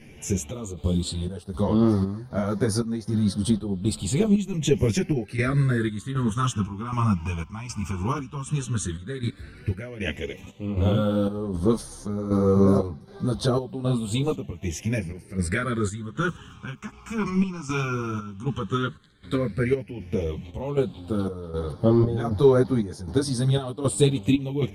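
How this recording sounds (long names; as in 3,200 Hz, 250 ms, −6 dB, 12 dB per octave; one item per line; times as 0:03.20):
phaser sweep stages 8, 0.1 Hz, lowest notch 520–2,600 Hz
chopped level 1.3 Hz, depth 65%, duty 65%
a shimmering, thickened sound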